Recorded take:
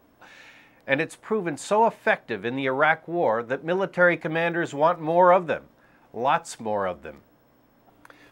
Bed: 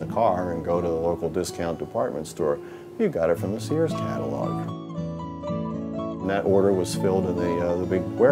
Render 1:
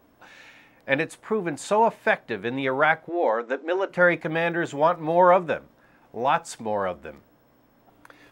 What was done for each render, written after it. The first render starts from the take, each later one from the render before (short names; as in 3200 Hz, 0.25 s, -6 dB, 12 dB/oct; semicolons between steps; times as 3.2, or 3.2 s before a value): 3.09–3.89 brick-wall FIR band-pass 220–8100 Hz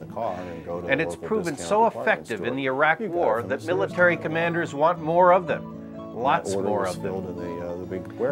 add bed -7.5 dB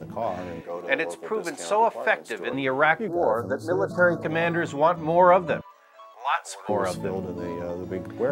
0.61–2.53 Bessel high-pass 410 Hz; 3.08–4.23 elliptic band-stop 1500–4200 Hz, stop band 60 dB; 5.61–6.69 HPF 900 Hz 24 dB/oct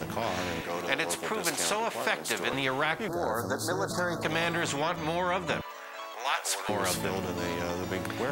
compressor 2.5:1, threshold -24 dBFS, peak gain reduction 8.5 dB; spectral compressor 2:1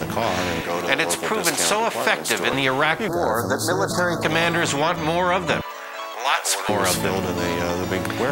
gain +9 dB; limiter -3 dBFS, peak gain reduction 0.5 dB